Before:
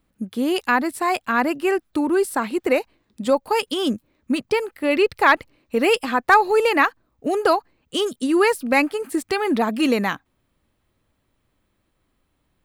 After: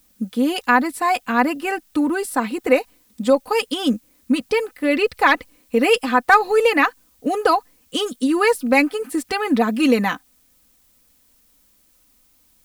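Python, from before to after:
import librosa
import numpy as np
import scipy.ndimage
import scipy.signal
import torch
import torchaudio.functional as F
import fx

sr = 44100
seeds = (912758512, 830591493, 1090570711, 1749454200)

y = x + 0.65 * np.pad(x, (int(4.0 * sr / 1000.0), 0))[:len(x)]
y = fx.dmg_noise_colour(y, sr, seeds[0], colour='blue', level_db=-59.0)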